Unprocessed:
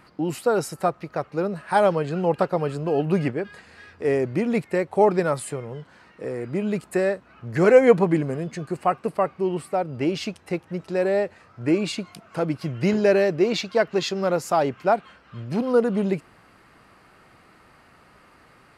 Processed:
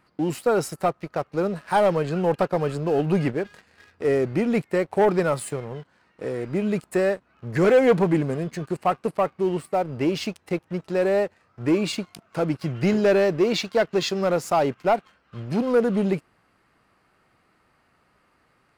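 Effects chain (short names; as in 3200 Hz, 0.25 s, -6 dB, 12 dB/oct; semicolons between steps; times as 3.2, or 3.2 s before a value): sample leveller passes 2; gain -6.5 dB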